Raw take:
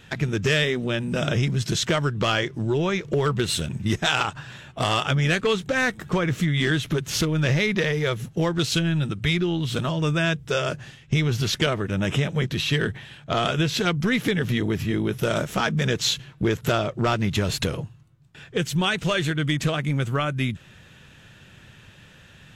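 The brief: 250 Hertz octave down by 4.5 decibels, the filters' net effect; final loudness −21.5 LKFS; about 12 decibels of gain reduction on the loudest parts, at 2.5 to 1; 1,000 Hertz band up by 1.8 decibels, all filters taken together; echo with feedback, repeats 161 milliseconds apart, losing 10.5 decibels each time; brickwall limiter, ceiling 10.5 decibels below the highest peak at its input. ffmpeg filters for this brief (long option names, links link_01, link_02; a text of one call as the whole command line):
ffmpeg -i in.wav -af "equalizer=frequency=250:width_type=o:gain=-8,equalizer=frequency=1000:width_type=o:gain=3,acompressor=threshold=-37dB:ratio=2.5,alimiter=level_in=6dB:limit=-24dB:level=0:latency=1,volume=-6dB,aecho=1:1:161|322|483:0.299|0.0896|0.0269,volume=17.5dB" out.wav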